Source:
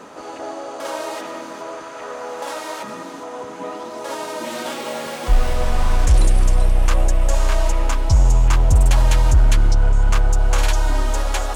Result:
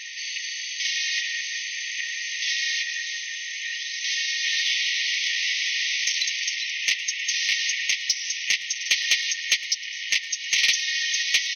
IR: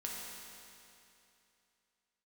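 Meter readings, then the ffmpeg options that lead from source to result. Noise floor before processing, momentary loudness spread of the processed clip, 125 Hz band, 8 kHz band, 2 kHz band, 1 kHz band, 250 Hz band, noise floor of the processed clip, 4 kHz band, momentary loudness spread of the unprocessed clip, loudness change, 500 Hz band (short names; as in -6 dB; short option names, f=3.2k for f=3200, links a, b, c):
-34 dBFS, 8 LU, under -40 dB, +5.5 dB, +8.0 dB, under -30 dB, under -30 dB, -34 dBFS, +11.5 dB, 16 LU, -3.0 dB, under -30 dB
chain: -filter_complex "[0:a]afftfilt=real='re*between(b*sr/4096,1800,6400)':imag='im*between(b*sr/4096,1800,6400)':win_size=4096:overlap=0.75,asplit=2[a][b];[b]acompressor=threshold=-43dB:ratio=6,volume=3dB[c];[a][c]amix=inputs=2:normalize=0,asoftclip=type=tanh:threshold=-16.5dB,aecho=1:1:111:0.112,volume=8.5dB"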